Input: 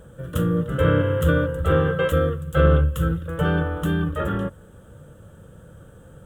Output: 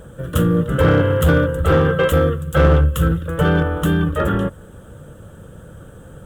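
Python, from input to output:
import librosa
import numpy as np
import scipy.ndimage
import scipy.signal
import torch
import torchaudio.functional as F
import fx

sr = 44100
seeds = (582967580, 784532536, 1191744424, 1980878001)

p1 = fx.hpss(x, sr, part='harmonic', gain_db=-4)
p2 = 10.0 ** (-18.0 / 20.0) * (np.abs((p1 / 10.0 ** (-18.0 / 20.0) + 3.0) % 4.0 - 2.0) - 1.0)
p3 = p1 + F.gain(torch.from_numpy(p2), -5.0).numpy()
y = F.gain(torch.from_numpy(p3), 5.0).numpy()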